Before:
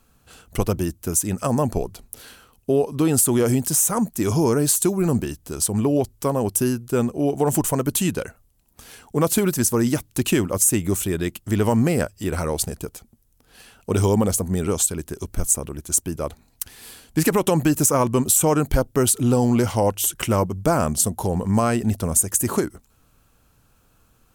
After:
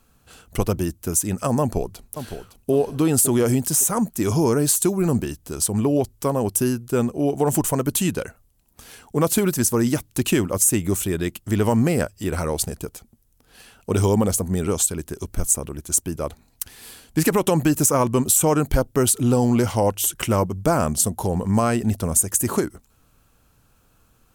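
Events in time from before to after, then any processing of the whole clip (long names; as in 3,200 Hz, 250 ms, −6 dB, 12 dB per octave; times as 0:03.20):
0:01.60–0:02.71: delay throw 560 ms, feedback 35%, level −10 dB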